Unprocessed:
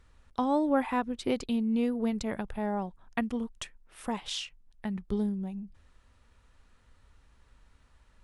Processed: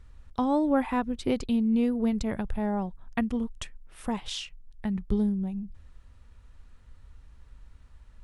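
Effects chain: bass shelf 160 Hz +11.5 dB

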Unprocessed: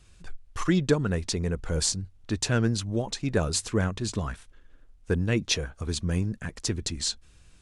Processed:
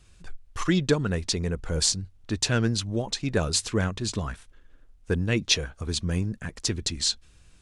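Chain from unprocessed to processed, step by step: dynamic bell 3.7 kHz, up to +5 dB, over -41 dBFS, Q 0.73

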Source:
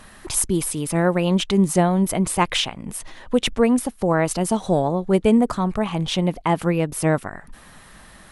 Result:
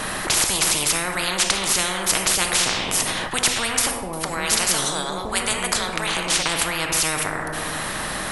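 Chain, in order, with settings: 3.91–6.43 s: bands offset in time lows, highs 220 ms, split 460 Hz; simulated room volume 320 m³, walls mixed, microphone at 0.54 m; spectrum-flattening compressor 10:1; trim +1 dB

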